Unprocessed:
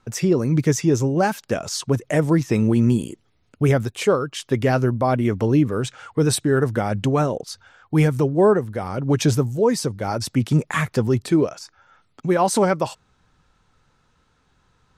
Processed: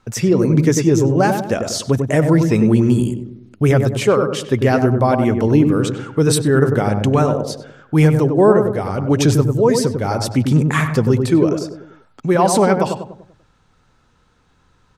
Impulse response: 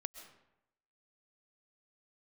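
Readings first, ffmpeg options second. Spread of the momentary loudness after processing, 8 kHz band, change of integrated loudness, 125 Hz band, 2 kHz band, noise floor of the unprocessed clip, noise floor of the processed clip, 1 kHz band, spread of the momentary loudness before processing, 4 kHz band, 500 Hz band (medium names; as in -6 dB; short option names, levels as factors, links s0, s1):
7 LU, +3.5 dB, +5.0 dB, +5.0 dB, +4.0 dB, -64 dBFS, -57 dBFS, +4.5 dB, 8 LU, +3.5 dB, +5.0 dB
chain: -filter_complex "[0:a]asplit=2[s0][s1];[s1]adelay=97,lowpass=f=970:p=1,volume=0.631,asplit=2[s2][s3];[s3]adelay=97,lowpass=f=970:p=1,volume=0.5,asplit=2[s4][s5];[s5]adelay=97,lowpass=f=970:p=1,volume=0.5,asplit=2[s6][s7];[s7]adelay=97,lowpass=f=970:p=1,volume=0.5,asplit=2[s8][s9];[s9]adelay=97,lowpass=f=970:p=1,volume=0.5,asplit=2[s10][s11];[s11]adelay=97,lowpass=f=970:p=1,volume=0.5[s12];[s0][s2][s4][s6][s8][s10][s12]amix=inputs=7:normalize=0,volume=1.5"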